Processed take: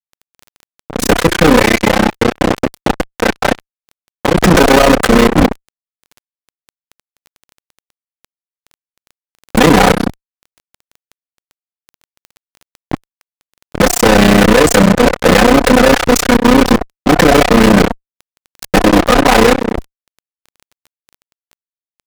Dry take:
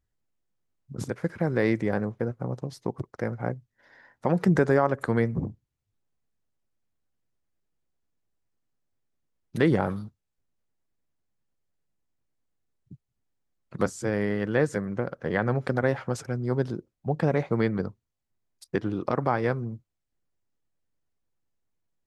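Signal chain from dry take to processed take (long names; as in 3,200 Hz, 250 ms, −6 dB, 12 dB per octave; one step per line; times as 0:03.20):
lower of the sound and its delayed copy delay 4 ms
noise gate −55 dBFS, range −8 dB
low-shelf EQ 290 Hz −5 dB
hum removal 353.9 Hz, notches 2
output level in coarse steps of 18 dB
0:01.59–0:04.43: tuned comb filter 120 Hz, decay 0.23 s, harmonics odd, mix 80%
amplitude modulation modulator 31 Hz, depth 95%
pitch vibrato 0.6 Hz 24 cents
fuzz pedal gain 56 dB, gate −57 dBFS
surface crackle 10 per second −35 dBFS
level +9 dB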